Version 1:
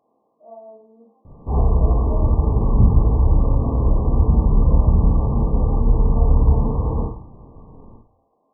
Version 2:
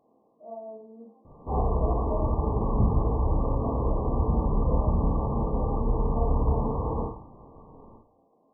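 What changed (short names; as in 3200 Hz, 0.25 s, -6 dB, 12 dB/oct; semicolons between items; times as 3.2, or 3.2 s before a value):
speech: add tilt shelf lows +5 dB, about 720 Hz; background: add low shelf 250 Hz -11 dB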